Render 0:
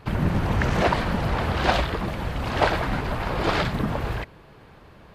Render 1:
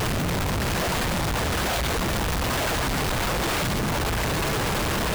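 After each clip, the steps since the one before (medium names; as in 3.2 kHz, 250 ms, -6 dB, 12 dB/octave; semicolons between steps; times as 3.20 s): one-bit comparator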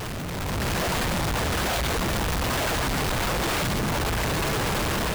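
level rider gain up to 7 dB; trim -7.5 dB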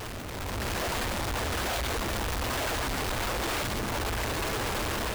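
peaking EQ 160 Hz -11.5 dB 0.45 oct; trim -4.5 dB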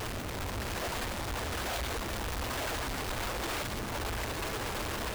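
peak limiter -32 dBFS, peak gain reduction 7.5 dB; trim +1 dB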